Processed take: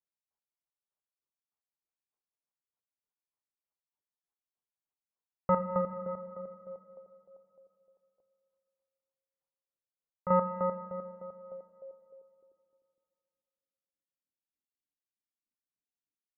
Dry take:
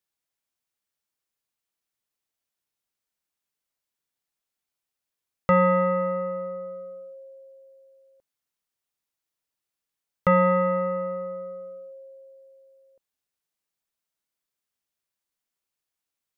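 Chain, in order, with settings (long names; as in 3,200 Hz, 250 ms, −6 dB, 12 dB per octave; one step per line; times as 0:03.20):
square-wave tremolo 3.3 Hz, depth 65%, duty 30%
low-pass filter sweep 990 Hz → 280 Hz, 0:11.39–0:12.73
rotating-speaker cabinet horn 5 Hz, later 0.9 Hz, at 0:08.60
on a send: convolution reverb RT60 2.7 s, pre-delay 5 ms, DRR 11 dB
on the sum: level −6.5 dB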